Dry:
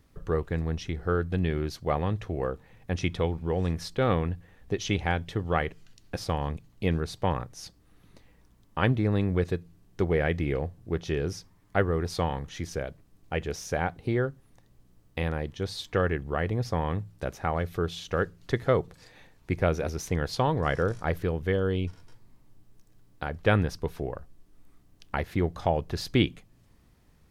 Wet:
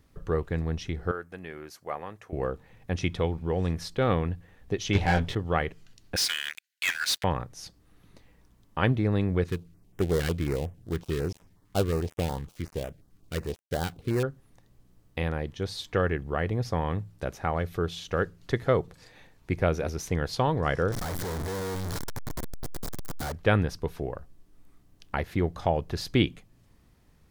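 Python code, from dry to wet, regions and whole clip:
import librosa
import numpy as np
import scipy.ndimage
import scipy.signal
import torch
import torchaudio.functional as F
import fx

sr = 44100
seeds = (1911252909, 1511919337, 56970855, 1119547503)

y = fx.chain(x, sr, fx.highpass(hz=1200.0, slope=6),
    fx.peak_eq(hz=3700.0, db=-12.0, octaves=1.0), at=(1.11, 2.33))
y = fx.chain(y, sr, fx.leveller(passes=3),
    fx.high_shelf(hz=7800.0, db=-7.0),
    fx.detune_double(cents=22), at=(4.93, 5.35))
y = fx.chain(y, sr, fx.brickwall_highpass(low_hz=1400.0),
    fx.leveller(passes=5), at=(6.16, 7.24))
y = fx.chain(y, sr, fx.dead_time(dead_ms=0.21),
    fx.filter_held_notch(hz=11.0, low_hz=620.0, high_hz=4300.0), at=(9.47, 14.23))
y = fx.chain(y, sr, fx.clip_1bit(),
    fx.peak_eq(hz=2700.0, db=-9.5, octaves=0.51), at=(20.92, 23.32))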